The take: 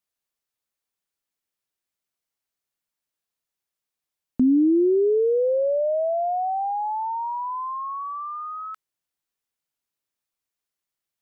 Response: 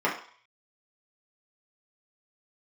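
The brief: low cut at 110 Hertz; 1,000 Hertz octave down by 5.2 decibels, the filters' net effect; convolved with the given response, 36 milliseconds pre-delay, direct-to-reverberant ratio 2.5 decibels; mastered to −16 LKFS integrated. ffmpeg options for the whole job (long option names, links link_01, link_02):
-filter_complex "[0:a]highpass=110,equalizer=frequency=1000:width_type=o:gain=-7,asplit=2[link_01][link_02];[1:a]atrim=start_sample=2205,adelay=36[link_03];[link_02][link_03]afir=irnorm=-1:irlink=0,volume=-16.5dB[link_04];[link_01][link_04]amix=inputs=2:normalize=0,volume=5.5dB"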